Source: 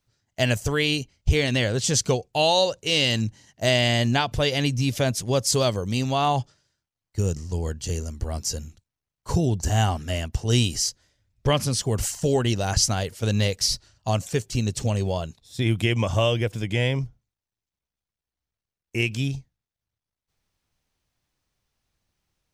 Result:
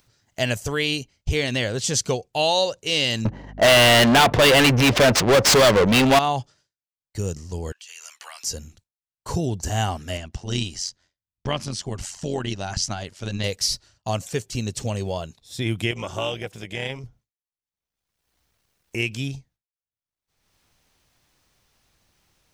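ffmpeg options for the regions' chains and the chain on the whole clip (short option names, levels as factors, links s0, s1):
-filter_complex "[0:a]asettb=1/sr,asplit=3[s0][s1][s2];[s0]atrim=end=3.254[s3];[s1]atrim=start=3.25:end=6.19,asetpts=PTS-STARTPTS,afade=t=in:d=0.004:c=qsin,afade=t=out:st=2.936:d=0.004:c=qsin,adynamicsmooth=sensitivity=6.5:basefreq=520,asplit=2[s4][s5];[s5]highpass=f=720:p=1,volume=63.1,asoftclip=type=tanh:threshold=0.447[s6];[s4][s6]amix=inputs=2:normalize=0,lowpass=f=6400:p=1,volume=0.501,aeval=exprs='val(0)+0.0158*(sin(2*PI*50*n/s)+sin(2*PI*2*50*n/s)/2+sin(2*PI*3*50*n/s)/3+sin(2*PI*4*50*n/s)/4+sin(2*PI*5*50*n/s)/5)':c=same[s7];[s2]atrim=start=6.186[s8];[s3][s7]acrossfade=d=0.004:c1=hsin:c2=qsin[s9];[s9][s8]acrossfade=d=0.004:c1=qsin:c2=hsin,asettb=1/sr,asplit=3[s10][s11][s12];[s10]atrim=end=7.724[s13];[s11]atrim=start=7.72:end=8.44,asetpts=PTS-STARTPTS,afade=t=in:d=0.004:c=qsin,afade=t=out:st=0.716:d=0.004:c=qsin,highpass=f=1000:w=0.5412,highpass=f=1000:w=1.3066,equalizer=f=2600:w=1.7:g=10.5,acompressor=threshold=0.00891:ratio=16:attack=3.2:release=140:knee=1:detection=peak[s14];[s12]atrim=start=8.436[s15];[s13][s14]acrossfade=d=0.004:c1=hsin:c2=qsin[s16];[s16][s15]acrossfade=d=0.004:c1=qsin:c2=hsin,asettb=1/sr,asplit=3[s17][s18][s19];[s17]atrim=end=10.174[s20];[s18]atrim=start=10.17:end=13.44,asetpts=PTS-STARTPTS,afade=t=in:d=0.004:c=qsin,afade=t=out:st=3.266:d=0.004:c=qsin,lowpass=6800,equalizer=f=480:t=o:w=0.24:g=-9.5,tremolo=f=90:d=0.621[s21];[s19]atrim=start=13.436[s22];[s20][s21]acrossfade=d=0.004:c1=hsin:c2=qsin[s23];[s23][s22]acrossfade=d=0.004:c1=qsin:c2=hsin,asettb=1/sr,asplit=3[s24][s25][s26];[s24]atrim=end=15.914[s27];[s25]atrim=start=15.91:end=17.04,asetpts=PTS-STARTPTS,afade=t=in:d=0.004:c=qsin,afade=t=out:st=1.126:d=0.004:c=qsin,lowshelf=f=380:g=-6,tremolo=f=280:d=0.621[s28];[s26]atrim=start=17.036[s29];[s27][s28]acrossfade=d=0.004:c1=hsin:c2=qsin[s30];[s30][s29]acrossfade=d=0.004:c1=qsin:c2=hsin,agate=range=0.0224:threshold=0.00398:ratio=3:detection=peak,lowshelf=f=200:g=-5,acompressor=mode=upward:threshold=0.0282:ratio=2.5"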